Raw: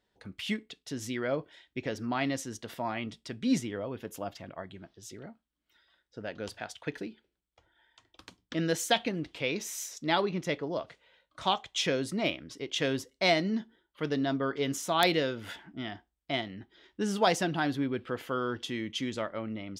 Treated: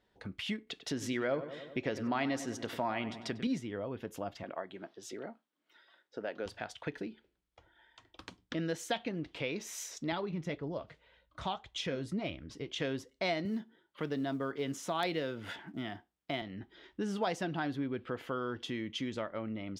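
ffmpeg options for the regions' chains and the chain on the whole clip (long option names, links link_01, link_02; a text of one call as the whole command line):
ffmpeg -i in.wav -filter_complex "[0:a]asettb=1/sr,asplit=3[link_01][link_02][link_03];[link_01]atrim=end=0.674[link_04];[link_02]atrim=start=0.67:end=3.47,asetpts=PTS-STARTPTS,afade=type=in:duration=0.004:curve=qsin,afade=type=out:start_time=2.796:duration=0.004:curve=qsin,lowshelf=frequency=150:gain=-8,acontrast=77,asplit=2[link_05][link_06];[link_06]adelay=97,lowpass=frequency=2800:poles=1,volume=-13dB,asplit=2[link_07][link_08];[link_08]adelay=97,lowpass=frequency=2800:poles=1,volume=0.51,asplit=2[link_09][link_10];[link_10]adelay=97,lowpass=frequency=2800:poles=1,volume=0.51,asplit=2[link_11][link_12];[link_12]adelay=97,lowpass=frequency=2800:poles=1,volume=0.51,asplit=2[link_13][link_14];[link_14]adelay=97,lowpass=frequency=2800:poles=1,volume=0.51[link_15];[link_05][link_07][link_09][link_11][link_13][link_15]amix=inputs=6:normalize=0,atrim=end_sample=123480[link_16];[link_03]atrim=start=3.466[link_17];[link_04][link_16]acrossfade=duration=0.004:curve1=hsin:curve2=qsin[link_18];[link_18][link_17]acrossfade=duration=0.004:curve1=qsin:curve2=hsin,asettb=1/sr,asplit=3[link_19][link_20][link_21];[link_19]atrim=end=4.434[link_22];[link_20]atrim=start=4.43:end=6.46,asetpts=PTS-STARTPTS,afade=type=in:duration=0.004:curve=qsin,afade=type=out:start_time=2.026:duration=0.004:curve=qsin,highpass=280,equalizer=frequency=610:width=0.37:gain=3.5[link_23];[link_21]atrim=start=6.456[link_24];[link_22][link_23]acrossfade=duration=0.004:curve1=hsin:curve2=qsin[link_25];[link_25][link_24]acrossfade=duration=0.004:curve1=qsin:curve2=hsin,asettb=1/sr,asplit=3[link_26][link_27][link_28];[link_26]atrim=end=10.124[link_29];[link_27]atrim=start=10.12:end=12.8,asetpts=PTS-STARTPTS,afade=type=in:duration=0.004:curve=qsin,afade=type=out:start_time=2.676:duration=0.004:curve=qsin,equalizer=frequency=63:width=0.59:gain=12.5,flanger=delay=0.2:depth=6.4:regen=64:speed=1.8:shape=sinusoidal[link_30];[link_28]atrim=start=12.796[link_31];[link_29][link_30]acrossfade=duration=0.004:curve1=hsin:curve2=qsin[link_32];[link_32][link_31]acrossfade=duration=0.004:curve1=qsin:curve2=hsin,asettb=1/sr,asplit=3[link_33][link_34][link_35];[link_33]atrim=end=13.454[link_36];[link_34]atrim=start=13.45:end=16.42,asetpts=PTS-STARTPTS,afade=type=in:duration=0.004:curve=qsin,afade=type=out:start_time=2.966:duration=0.004:curve=qsin,acrusher=bits=8:mode=log:mix=0:aa=0.000001,highpass=frequency=87:width=0.5412,highpass=frequency=87:width=1.3066[link_37];[link_35]atrim=start=16.416[link_38];[link_36][link_37]acrossfade=duration=0.004:curve1=hsin:curve2=qsin[link_39];[link_39][link_38]acrossfade=duration=0.004:curve1=qsin:curve2=hsin,aemphasis=mode=reproduction:type=cd,acompressor=threshold=-43dB:ratio=2,volume=3.5dB" out.wav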